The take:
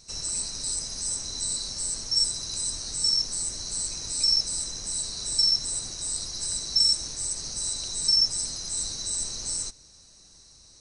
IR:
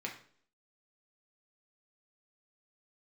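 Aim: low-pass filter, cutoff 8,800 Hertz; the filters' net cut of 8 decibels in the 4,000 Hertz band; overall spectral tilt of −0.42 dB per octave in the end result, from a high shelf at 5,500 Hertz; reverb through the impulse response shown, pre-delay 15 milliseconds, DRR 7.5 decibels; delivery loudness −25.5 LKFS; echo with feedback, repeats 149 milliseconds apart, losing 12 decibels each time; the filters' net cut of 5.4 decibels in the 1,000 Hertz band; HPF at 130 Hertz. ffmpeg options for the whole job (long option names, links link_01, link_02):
-filter_complex "[0:a]highpass=130,lowpass=8800,equalizer=frequency=1000:width_type=o:gain=-6.5,equalizer=frequency=4000:width_type=o:gain=-7,highshelf=frequency=5500:gain=-7,aecho=1:1:149|298|447:0.251|0.0628|0.0157,asplit=2[link_01][link_02];[1:a]atrim=start_sample=2205,adelay=15[link_03];[link_02][link_03]afir=irnorm=-1:irlink=0,volume=-9dB[link_04];[link_01][link_04]amix=inputs=2:normalize=0,volume=7.5dB"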